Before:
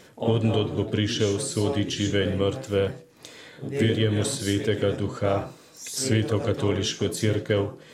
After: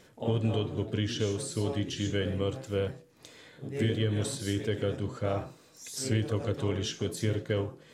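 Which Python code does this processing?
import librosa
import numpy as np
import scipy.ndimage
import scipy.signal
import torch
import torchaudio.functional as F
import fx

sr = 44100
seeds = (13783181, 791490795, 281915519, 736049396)

y = fx.low_shelf(x, sr, hz=86.0, db=7.5)
y = y * 10.0 ** (-7.5 / 20.0)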